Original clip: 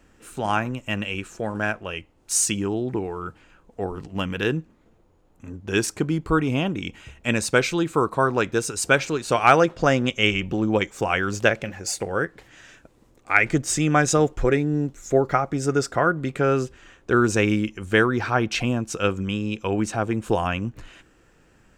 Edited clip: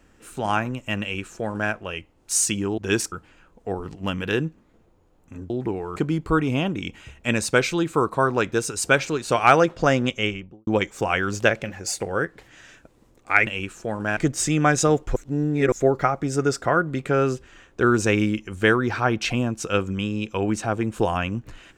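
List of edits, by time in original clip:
0:01.02–0:01.72: duplicate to 0:13.47
0:02.78–0:03.24: swap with 0:05.62–0:05.96
0:10.04–0:10.67: fade out and dull
0:14.46–0:15.02: reverse

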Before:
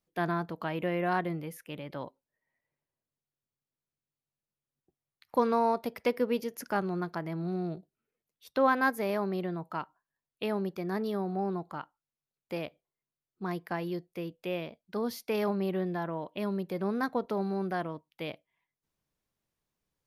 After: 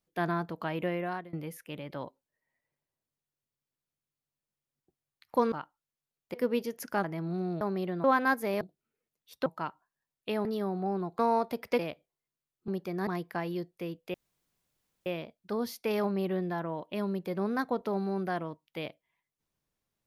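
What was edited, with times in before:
0:00.85–0:01.33: fade out, to −23 dB
0:05.52–0:06.12: swap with 0:11.72–0:12.54
0:06.82–0:07.18: remove
0:07.75–0:08.60: swap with 0:09.17–0:09.60
0:10.59–0:10.98: move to 0:13.43
0:14.50: splice in room tone 0.92 s

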